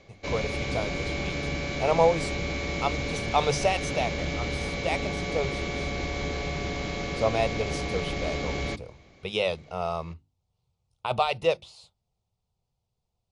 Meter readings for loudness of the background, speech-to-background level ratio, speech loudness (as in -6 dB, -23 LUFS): -31.0 LUFS, 1.5 dB, -29.5 LUFS